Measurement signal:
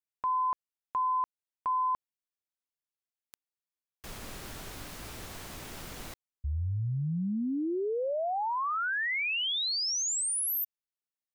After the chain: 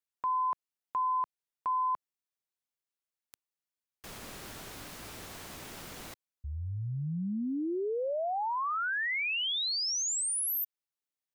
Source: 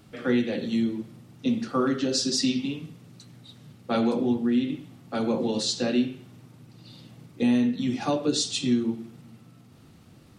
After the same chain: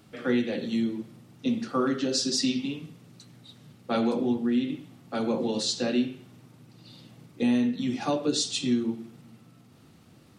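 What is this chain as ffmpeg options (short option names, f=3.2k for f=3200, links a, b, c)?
-af "lowshelf=f=73:g=-10,volume=-1dB"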